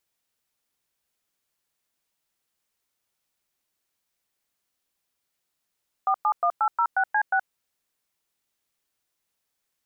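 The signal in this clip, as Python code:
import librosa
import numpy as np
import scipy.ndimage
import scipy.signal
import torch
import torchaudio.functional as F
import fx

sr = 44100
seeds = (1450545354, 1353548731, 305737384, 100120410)

y = fx.dtmf(sr, digits='471806C6', tone_ms=73, gap_ms=106, level_db=-21.5)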